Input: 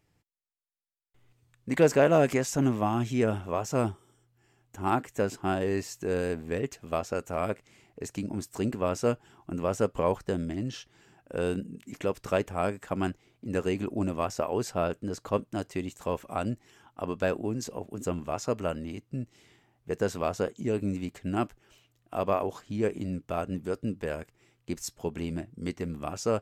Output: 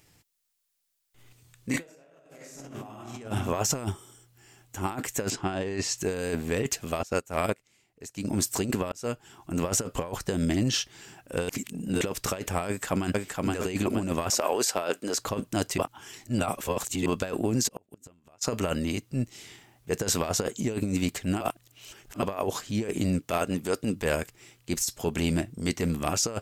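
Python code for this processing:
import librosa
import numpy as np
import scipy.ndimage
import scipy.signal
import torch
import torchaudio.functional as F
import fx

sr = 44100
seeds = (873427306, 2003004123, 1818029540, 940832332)

y = fx.reverb_throw(x, sr, start_s=1.7, length_s=1.43, rt60_s=0.94, drr_db=-4.0)
y = fx.air_absorb(y, sr, metres=80.0, at=(5.3, 5.98))
y = fx.upward_expand(y, sr, threshold_db=-40.0, expansion=2.5, at=(7.03, 8.25))
y = fx.echo_throw(y, sr, start_s=12.67, length_s=0.81, ms=470, feedback_pct=40, wet_db=-3.5)
y = fx.highpass(y, sr, hz=360.0, slope=12, at=(14.3, 15.19))
y = fx.gate_flip(y, sr, shuts_db=-26.0, range_db=-36, at=(17.67, 18.41), fade=0.02)
y = fx.low_shelf(y, sr, hz=140.0, db=-10.0, at=(23.19, 23.93))
y = fx.edit(y, sr, fx.fade_in_span(start_s=8.92, length_s=0.69),
    fx.reverse_span(start_s=11.49, length_s=0.52),
    fx.reverse_span(start_s=15.78, length_s=1.28),
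    fx.reverse_span(start_s=21.41, length_s=0.81), tone=tone)
y = fx.high_shelf(y, sr, hz=2800.0, db=11.5)
y = fx.transient(y, sr, attack_db=-7, sustain_db=-1)
y = fx.over_compress(y, sr, threshold_db=-32.0, ratio=-0.5)
y = y * 10.0 ** (3.5 / 20.0)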